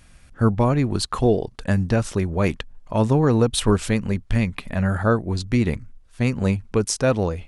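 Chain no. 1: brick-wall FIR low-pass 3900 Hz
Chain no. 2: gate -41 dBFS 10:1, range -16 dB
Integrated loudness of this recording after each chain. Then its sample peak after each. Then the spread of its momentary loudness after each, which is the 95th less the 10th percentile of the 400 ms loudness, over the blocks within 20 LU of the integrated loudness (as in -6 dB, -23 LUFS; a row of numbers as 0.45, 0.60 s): -22.0, -22.0 LUFS; -6.0, -6.0 dBFS; 6, 6 LU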